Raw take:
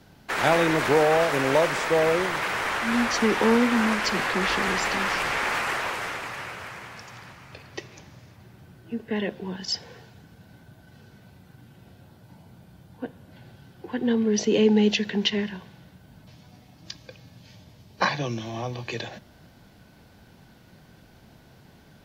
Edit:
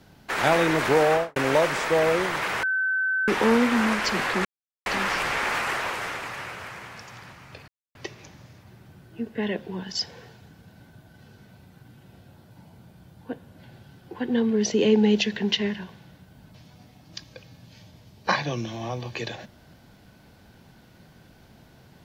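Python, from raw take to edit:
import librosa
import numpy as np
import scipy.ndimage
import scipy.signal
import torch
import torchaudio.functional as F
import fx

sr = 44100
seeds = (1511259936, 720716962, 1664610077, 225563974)

y = fx.studio_fade_out(x, sr, start_s=1.11, length_s=0.25)
y = fx.edit(y, sr, fx.bleep(start_s=2.63, length_s=0.65, hz=1530.0, db=-21.5),
    fx.silence(start_s=4.45, length_s=0.41),
    fx.insert_silence(at_s=7.68, length_s=0.27), tone=tone)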